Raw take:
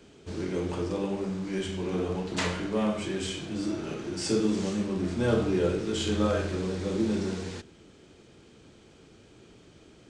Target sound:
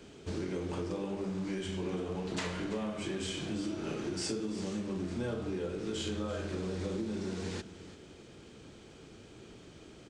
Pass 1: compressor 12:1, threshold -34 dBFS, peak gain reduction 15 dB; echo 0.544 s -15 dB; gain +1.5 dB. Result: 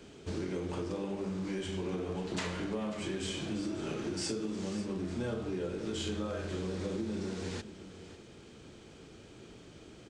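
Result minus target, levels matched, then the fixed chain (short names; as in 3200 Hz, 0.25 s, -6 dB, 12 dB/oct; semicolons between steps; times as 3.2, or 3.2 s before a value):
echo 0.209 s late
compressor 12:1, threshold -34 dBFS, peak gain reduction 15 dB; echo 0.335 s -15 dB; gain +1.5 dB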